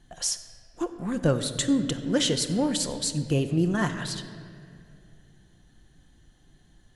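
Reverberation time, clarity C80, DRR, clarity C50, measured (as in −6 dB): 2.4 s, 11.0 dB, 6.5 dB, 10.0 dB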